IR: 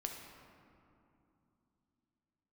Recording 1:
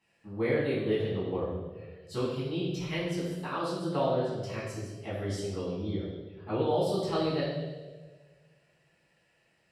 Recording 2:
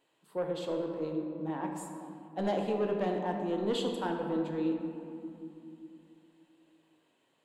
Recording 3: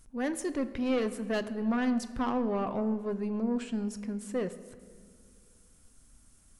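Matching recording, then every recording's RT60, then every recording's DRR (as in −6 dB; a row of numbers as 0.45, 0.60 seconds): 2; 1.4, 2.8, 2.0 seconds; −10.5, 1.5, 10.5 decibels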